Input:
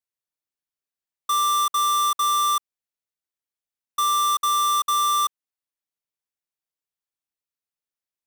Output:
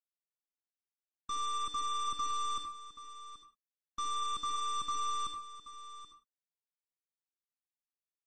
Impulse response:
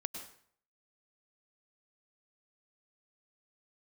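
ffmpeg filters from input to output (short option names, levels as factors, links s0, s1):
-filter_complex "[0:a]lowshelf=f=200:t=q:w=3:g=-7,aeval=exprs='0.106*(cos(1*acos(clip(val(0)/0.106,-1,1)))-cos(1*PI/2))+0.00596*(cos(7*acos(clip(val(0)/0.106,-1,1)))-cos(7*PI/2))+0.0188*(cos(8*acos(clip(val(0)/0.106,-1,1)))-cos(8*PI/2))':c=same,aecho=1:1:779:0.211[s0];[1:a]atrim=start_sample=2205,afade=t=out:st=0.36:d=0.01,atrim=end_sample=16317,asetrate=70560,aresample=44100[s1];[s0][s1]afir=irnorm=-1:irlink=0,volume=0.398" -ar 44100 -c:a libmp3lame -b:a 32k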